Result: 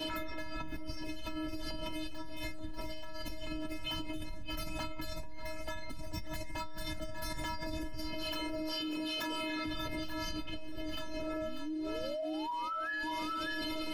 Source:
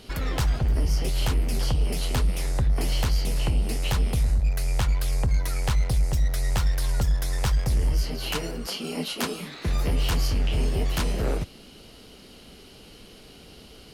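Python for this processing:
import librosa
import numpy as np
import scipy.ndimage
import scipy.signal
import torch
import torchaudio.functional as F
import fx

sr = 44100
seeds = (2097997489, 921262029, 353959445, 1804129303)

p1 = fx.highpass(x, sr, hz=41.0, slope=6)
p2 = fx.peak_eq(p1, sr, hz=10000.0, db=-14.0, octaves=1.3)
p3 = fx.hum_notches(p2, sr, base_hz=50, count=9)
p4 = fx.whisperise(p3, sr, seeds[0])
p5 = fx.spec_paint(p4, sr, seeds[1], shape='rise', start_s=11.41, length_s=1.55, low_hz=210.0, high_hz=1900.0, level_db=-36.0)
p6 = fx.volume_shaper(p5, sr, bpm=153, per_beat=2, depth_db=-16, release_ms=79.0, shape='slow start')
p7 = p5 + F.gain(torch.from_numpy(p6), -2.0).numpy()
p8 = fx.wow_flutter(p7, sr, seeds[2], rate_hz=2.1, depth_cents=26.0)
p9 = fx.stiff_resonator(p8, sr, f0_hz=310.0, decay_s=0.61, stiffness=0.008)
p10 = p9 + fx.echo_single(p9, sr, ms=591, db=-13.5, dry=0)
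p11 = fx.env_flatten(p10, sr, amount_pct=100)
y = F.gain(torch.from_numpy(p11), -7.0).numpy()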